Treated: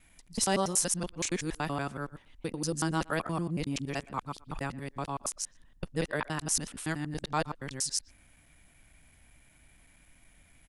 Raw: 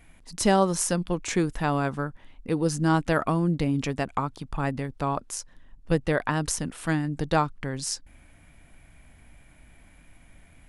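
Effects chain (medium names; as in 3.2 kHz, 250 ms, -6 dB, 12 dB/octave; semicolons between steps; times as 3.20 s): time reversed locally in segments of 94 ms; treble shelf 2.5 kHz +10 dB; speakerphone echo 120 ms, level -21 dB; trim -8.5 dB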